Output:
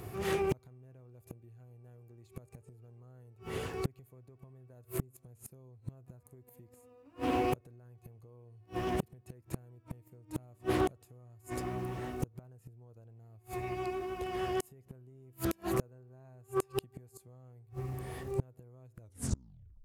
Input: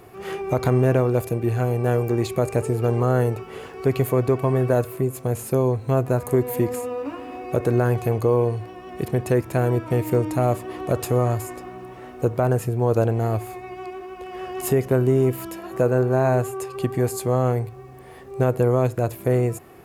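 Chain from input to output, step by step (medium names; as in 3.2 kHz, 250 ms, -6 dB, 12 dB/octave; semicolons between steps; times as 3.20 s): tape stop on the ending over 0.86 s; peaking EQ 93 Hz +12 dB 2.3 oct; gain riding within 5 dB 0.5 s; treble shelf 4.1 kHz +9 dB; compression 8:1, threshold -15 dBFS, peak gain reduction 8.5 dB; inverted gate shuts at -15 dBFS, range -35 dB; loudspeaker Doppler distortion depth 0.54 ms; trim -2.5 dB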